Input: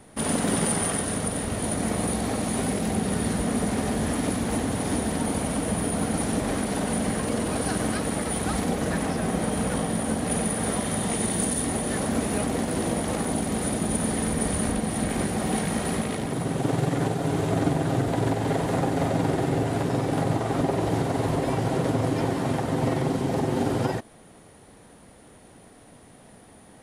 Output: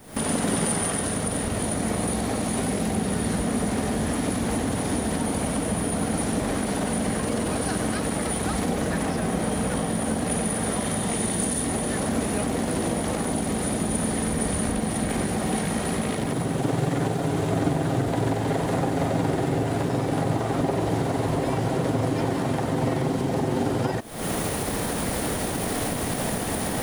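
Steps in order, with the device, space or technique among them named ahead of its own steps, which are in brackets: cheap recorder with automatic gain (white noise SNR 35 dB; recorder AGC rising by 77 dB/s)

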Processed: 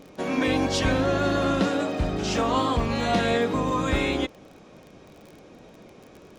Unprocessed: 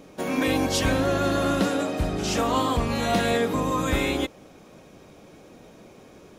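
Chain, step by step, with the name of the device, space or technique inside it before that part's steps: lo-fi chain (LPF 6000 Hz 12 dB/oct; wow and flutter 22 cents; crackle 33/s -37 dBFS)

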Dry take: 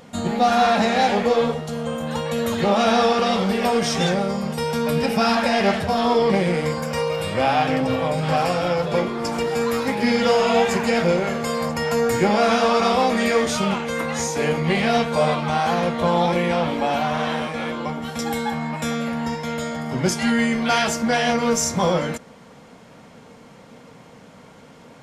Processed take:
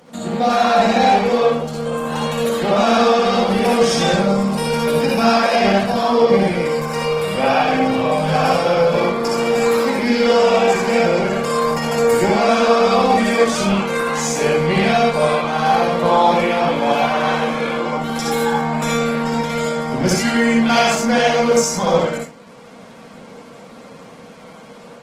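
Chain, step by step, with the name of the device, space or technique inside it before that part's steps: far-field microphone of a smart speaker (reverb RT60 0.35 s, pre-delay 55 ms, DRR -1.5 dB; HPF 140 Hz 24 dB/oct; AGC gain up to 4 dB; gain -1 dB; Opus 16 kbps 48000 Hz)

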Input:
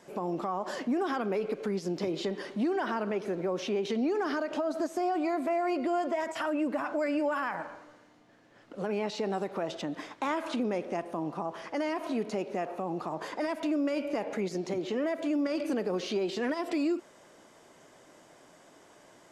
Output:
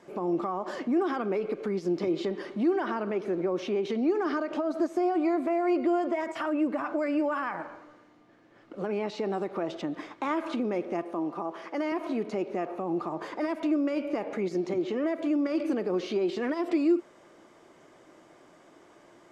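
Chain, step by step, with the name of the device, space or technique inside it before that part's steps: 11.03–11.92 HPF 220 Hz 12 dB/oct; inside a helmet (high shelf 5200 Hz -9.5 dB; small resonant body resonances 340/1200/2200 Hz, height 7 dB)

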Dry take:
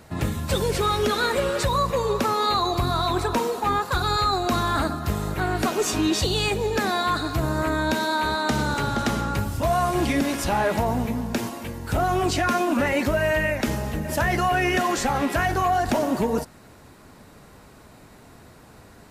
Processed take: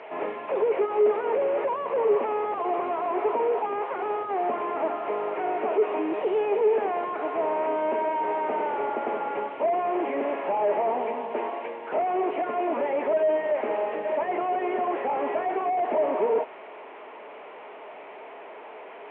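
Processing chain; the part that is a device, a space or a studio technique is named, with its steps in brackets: digital answering machine (BPF 340–3000 Hz; delta modulation 16 kbps, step -40.5 dBFS; speaker cabinet 370–4500 Hz, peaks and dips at 420 Hz +10 dB, 640 Hz +8 dB, 910 Hz +7 dB, 1500 Hz -4 dB, 2300 Hz +4 dB, 3700 Hz -6 dB)

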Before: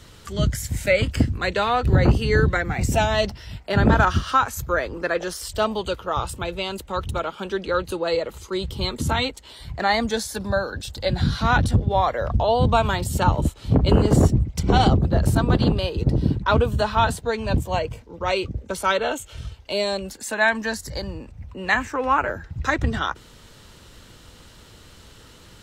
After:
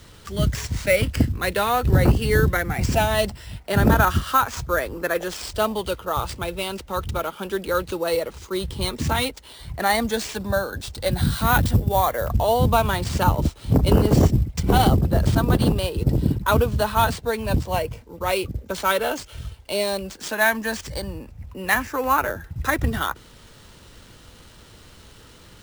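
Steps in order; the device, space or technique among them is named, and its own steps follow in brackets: early companding sampler (sample-rate reducer 13000 Hz, jitter 0%; companded quantiser 8-bit); 11.11–12.3 high shelf 10000 Hz +8 dB

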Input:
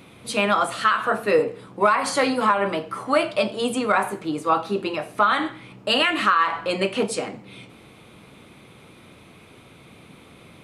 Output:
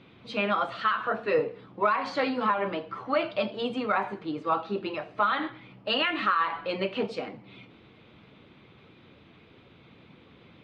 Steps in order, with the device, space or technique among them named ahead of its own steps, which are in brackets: clip after many re-uploads (LPF 4300 Hz 24 dB/oct; bin magnitudes rounded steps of 15 dB); gain -6 dB

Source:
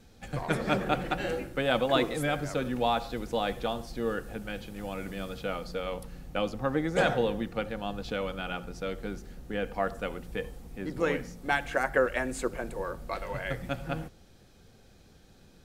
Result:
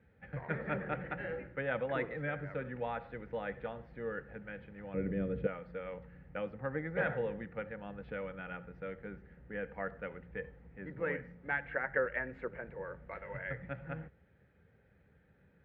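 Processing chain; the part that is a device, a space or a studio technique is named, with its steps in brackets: bass cabinet (speaker cabinet 61–2000 Hz, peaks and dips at 100 Hz -5 dB, 240 Hz -8 dB, 340 Hz -9 dB, 720 Hz -9 dB, 1100 Hz -9 dB, 1900 Hz +6 dB); 4.94–5.47 resonant low shelf 610 Hz +11 dB, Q 1.5; gain -5 dB

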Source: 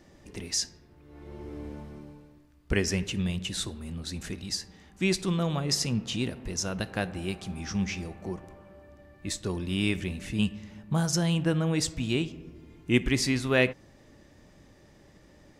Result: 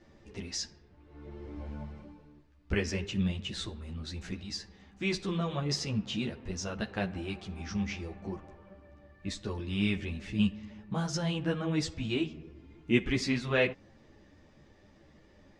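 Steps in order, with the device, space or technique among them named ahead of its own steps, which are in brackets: 1.56–2.04 doubler 15 ms -4 dB; string-machine ensemble chorus (ensemble effect; LPF 4900 Hz 12 dB/oct)

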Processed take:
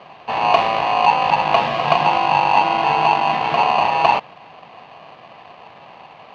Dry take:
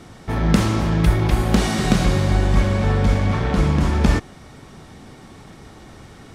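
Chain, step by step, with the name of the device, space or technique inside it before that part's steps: ring modulator pedal into a guitar cabinet (polarity switched at an audio rate 890 Hz; speaker cabinet 100–3500 Hz, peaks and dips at 160 Hz +6 dB, 720 Hz +4 dB, 1400 Hz -6 dB)

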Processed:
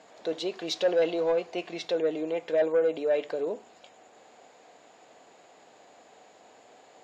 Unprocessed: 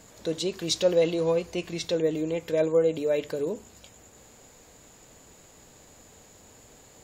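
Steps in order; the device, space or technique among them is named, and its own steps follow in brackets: intercom (BPF 340–3800 Hz; bell 720 Hz +9 dB 0.36 oct; soft clip -17 dBFS, distortion -16 dB)

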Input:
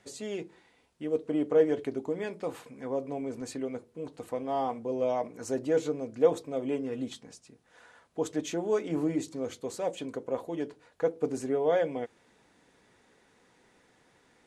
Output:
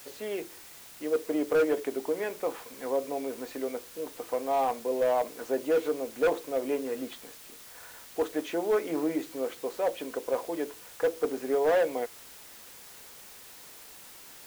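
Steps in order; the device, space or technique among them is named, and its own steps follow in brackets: aircraft radio (BPF 390–2600 Hz; hard clip -25 dBFS, distortion -11 dB; white noise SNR 18 dB); gain +5 dB

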